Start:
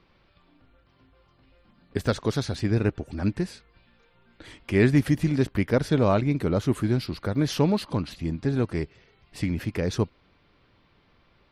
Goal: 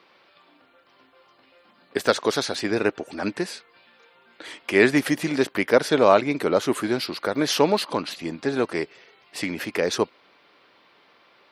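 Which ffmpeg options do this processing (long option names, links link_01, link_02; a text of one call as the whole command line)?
ffmpeg -i in.wav -af "highpass=430,volume=8.5dB" out.wav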